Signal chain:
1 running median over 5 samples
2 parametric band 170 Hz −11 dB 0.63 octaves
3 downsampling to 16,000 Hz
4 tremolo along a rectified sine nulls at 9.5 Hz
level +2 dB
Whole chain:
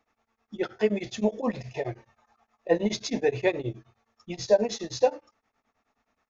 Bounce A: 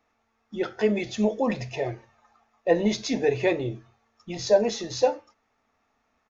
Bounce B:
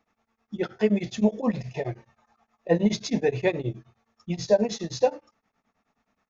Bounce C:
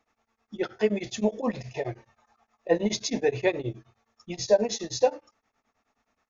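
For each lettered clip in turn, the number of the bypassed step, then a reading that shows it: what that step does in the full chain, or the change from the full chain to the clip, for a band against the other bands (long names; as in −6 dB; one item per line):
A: 4, change in momentary loudness spread −4 LU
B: 2, 125 Hz band +6.0 dB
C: 1, 4 kHz band +2.0 dB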